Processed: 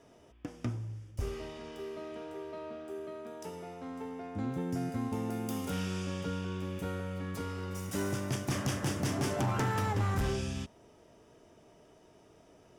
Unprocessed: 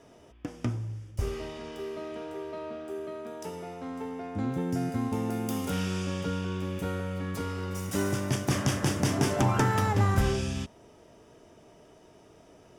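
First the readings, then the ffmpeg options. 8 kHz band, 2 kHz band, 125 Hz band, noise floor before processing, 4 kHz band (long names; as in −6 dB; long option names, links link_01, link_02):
−5.5 dB, −5.0 dB, −5.5 dB, −56 dBFS, −5.0 dB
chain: -af "asoftclip=type=hard:threshold=-21.5dB,volume=-4.5dB"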